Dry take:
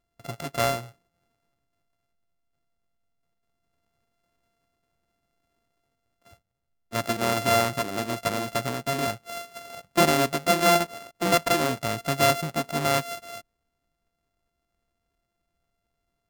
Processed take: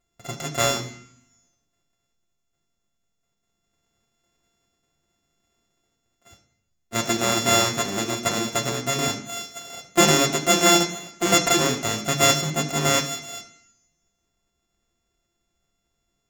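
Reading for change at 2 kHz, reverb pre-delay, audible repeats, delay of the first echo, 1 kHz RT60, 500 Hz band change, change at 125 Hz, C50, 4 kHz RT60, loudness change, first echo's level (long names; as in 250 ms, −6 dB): +3.0 dB, 3 ms, no echo audible, no echo audible, 0.70 s, +1.0 dB, +3.0 dB, 10.5 dB, 0.90 s, +4.0 dB, no echo audible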